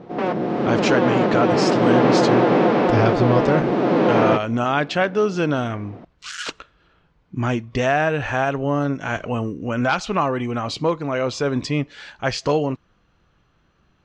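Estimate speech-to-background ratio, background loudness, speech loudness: -4.5 dB, -18.5 LUFS, -23.0 LUFS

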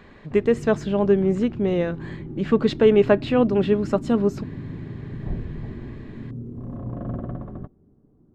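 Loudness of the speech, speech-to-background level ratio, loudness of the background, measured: -21.0 LUFS, 13.5 dB, -34.5 LUFS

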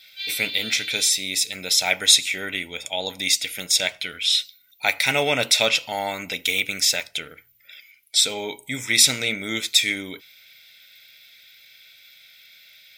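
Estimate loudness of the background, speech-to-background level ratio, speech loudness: -30.0 LUFS, 9.5 dB, -20.5 LUFS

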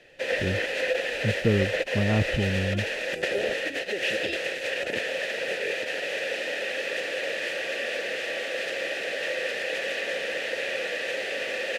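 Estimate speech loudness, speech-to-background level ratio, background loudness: -29.0 LUFS, -0.5 dB, -28.5 LUFS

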